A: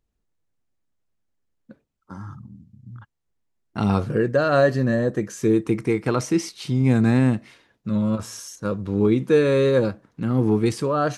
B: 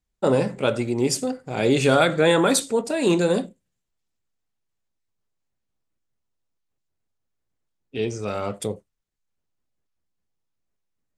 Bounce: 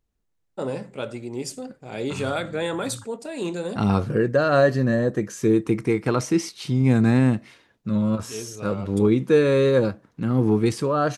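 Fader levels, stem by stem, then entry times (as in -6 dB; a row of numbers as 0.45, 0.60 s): 0.0, -9.0 dB; 0.00, 0.35 s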